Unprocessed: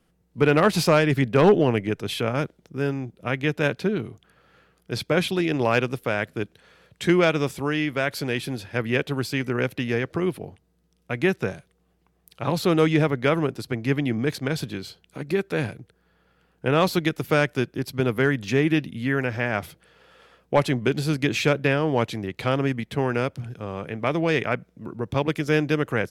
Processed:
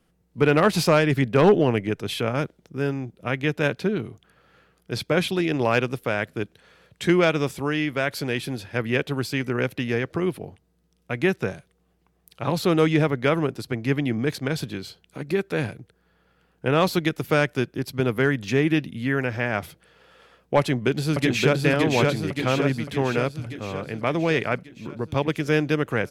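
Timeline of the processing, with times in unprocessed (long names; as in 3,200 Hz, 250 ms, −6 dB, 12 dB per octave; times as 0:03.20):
0:20.59–0:21.60: delay throw 570 ms, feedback 60%, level −2 dB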